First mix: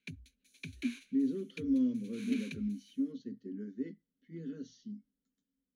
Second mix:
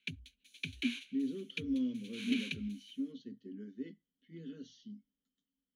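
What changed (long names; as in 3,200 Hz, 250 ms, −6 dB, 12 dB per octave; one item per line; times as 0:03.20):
speech −4.5 dB
master: add parametric band 3,100 Hz +13 dB 0.69 octaves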